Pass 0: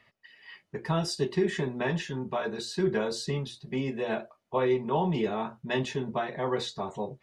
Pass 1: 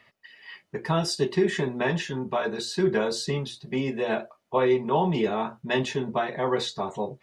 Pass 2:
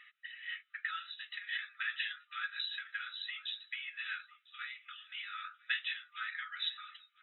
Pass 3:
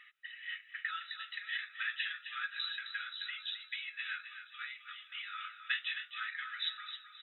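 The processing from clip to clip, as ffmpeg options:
-af "lowshelf=f=120:g=-6.5,volume=4.5dB"
-af "acompressor=threshold=-29dB:ratio=6,aecho=1:1:1000:0.0708,afftfilt=real='re*between(b*sr/4096,1200,4000)':imag='im*between(b*sr/4096,1200,4000)':win_size=4096:overlap=0.75,volume=2dB"
-af "aecho=1:1:263|526|789|1052:0.335|0.111|0.0365|0.012"

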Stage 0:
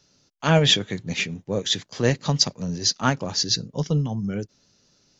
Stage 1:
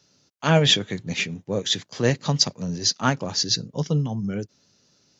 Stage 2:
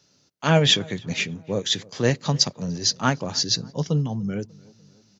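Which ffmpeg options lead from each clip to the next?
-af "highpass=70"
-filter_complex "[0:a]asplit=2[a][b];[b]adelay=295,lowpass=f=1.7k:p=1,volume=-23.5dB,asplit=2[c][d];[d]adelay=295,lowpass=f=1.7k:p=1,volume=0.53,asplit=2[e][f];[f]adelay=295,lowpass=f=1.7k:p=1,volume=0.53[g];[a][c][e][g]amix=inputs=4:normalize=0"

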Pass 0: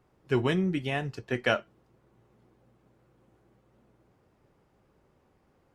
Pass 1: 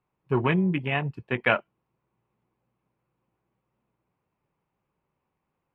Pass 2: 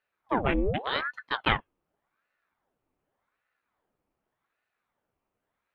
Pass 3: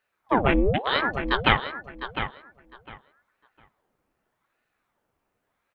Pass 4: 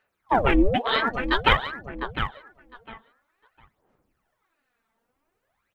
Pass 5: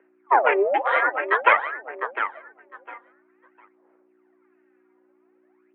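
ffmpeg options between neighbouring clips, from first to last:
-af "afwtdn=0.0178,equalizer=f=160:t=o:w=0.67:g=6,equalizer=f=1k:t=o:w=0.67:g=9,equalizer=f=2.5k:t=o:w=0.67:g=10,equalizer=f=6.3k:t=o:w=0.67:g=-9"
-af "aeval=exprs='val(0)*sin(2*PI*890*n/s+890*0.85/0.86*sin(2*PI*0.86*n/s))':c=same"
-filter_complex "[0:a]asplit=2[a][b];[b]adelay=705,lowpass=f=3.6k:p=1,volume=-9dB,asplit=2[c][d];[d]adelay=705,lowpass=f=3.6k:p=1,volume=0.2,asplit=2[e][f];[f]adelay=705,lowpass=f=3.6k:p=1,volume=0.2[g];[a][c][e][g]amix=inputs=4:normalize=0,volume=5.5dB"
-af "aphaser=in_gain=1:out_gain=1:delay=4.5:decay=0.62:speed=0.51:type=sinusoidal,volume=-1dB"
-af "aeval=exprs='val(0)+0.00631*(sin(2*PI*60*n/s)+sin(2*PI*2*60*n/s)/2+sin(2*PI*3*60*n/s)/3+sin(2*PI*4*60*n/s)/4+sin(2*PI*5*60*n/s)/5)':c=same,highpass=f=360:t=q:w=0.5412,highpass=f=360:t=q:w=1.307,lowpass=f=2.3k:t=q:w=0.5176,lowpass=f=2.3k:t=q:w=0.7071,lowpass=f=2.3k:t=q:w=1.932,afreqshift=69,volume=4dB"

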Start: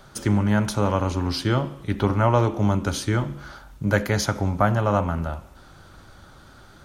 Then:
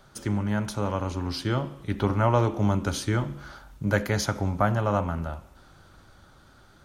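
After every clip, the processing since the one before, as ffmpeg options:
-af "dynaudnorm=f=200:g=17:m=11.5dB,volume=-6.5dB"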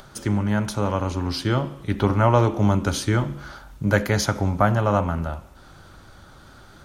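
-af "acompressor=mode=upward:threshold=-45dB:ratio=2.5,volume=4.5dB"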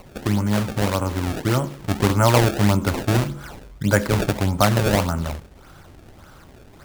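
-af "acrusher=samples=25:mix=1:aa=0.000001:lfo=1:lforange=40:lforate=1.7,volume=1.5dB"

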